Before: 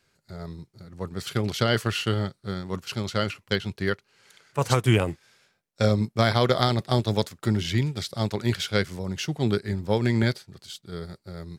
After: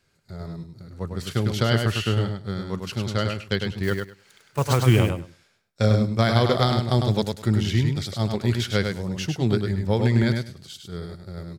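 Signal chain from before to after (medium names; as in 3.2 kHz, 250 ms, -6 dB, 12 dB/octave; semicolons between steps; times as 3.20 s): 3.83–5.01 s: block-companded coder 5-bit; bass shelf 190 Hz +5.5 dB; on a send: feedback delay 102 ms, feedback 16%, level -5 dB; on the sum: trim -1 dB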